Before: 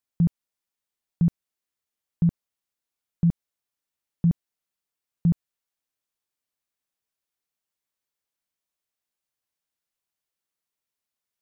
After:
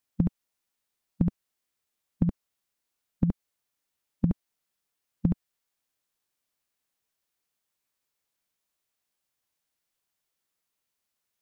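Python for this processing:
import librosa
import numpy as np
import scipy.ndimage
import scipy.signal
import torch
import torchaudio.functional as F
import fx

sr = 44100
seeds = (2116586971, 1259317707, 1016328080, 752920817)

y = fx.dynamic_eq(x, sr, hz=160.0, q=1.3, threshold_db=-31.0, ratio=4.0, max_db=-6)
y = fx.formant_shift(y, sr, semitones=2)
y = F.gain(torch.from_numpy(y), 4.5).numpy()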